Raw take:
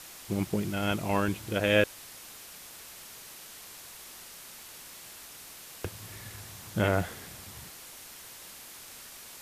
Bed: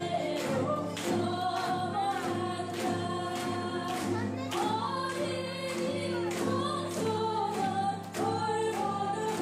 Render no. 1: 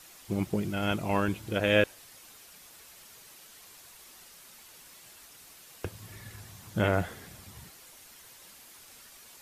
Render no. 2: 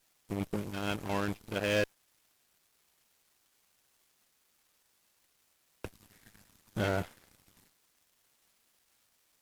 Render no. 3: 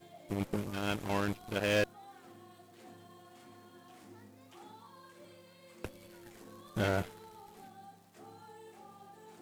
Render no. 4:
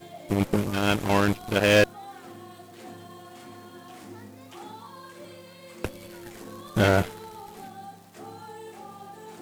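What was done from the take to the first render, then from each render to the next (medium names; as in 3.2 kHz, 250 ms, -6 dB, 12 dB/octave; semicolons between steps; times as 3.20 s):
noise reduction 7 dB, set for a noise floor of -48 dBFS
saturation -25 dBFS, distortion -9 dB; Chebyshev shaper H 3 -10 dB, 6 -21 dB, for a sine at -25 dBFS
add bed -23 dB
trim +11 dB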